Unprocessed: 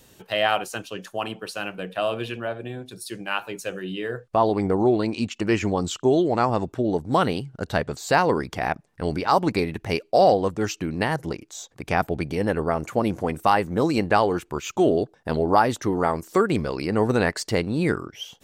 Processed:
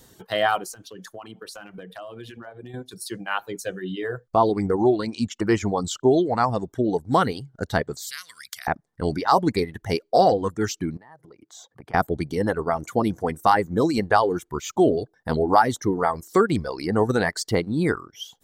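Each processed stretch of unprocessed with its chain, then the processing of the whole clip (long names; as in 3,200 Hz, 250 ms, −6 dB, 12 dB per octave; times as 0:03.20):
0:00.71–0:02.74: downward compressor, threshold −35 dBFS + hard clipping −29 dBFS
0:08.01–0:08.67: inverse Chebyshev high-pass filter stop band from 950 Hz + every bin compressed towards the loudest bin 2 to 1
0:10.97–0:11.94: high-pass filter 86 Hz 24 dB per octave + high-shelf EQ 3,900 Hz −11.5 dB + downward compressor 10 to 1, threshold −40 dBFS
whole clip: parametric band 2,600 Hz −12.5 dB 0.27 octaves; reverb reduction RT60 1.2 s; notch filter 580 Hz, Q 12; level +2 dB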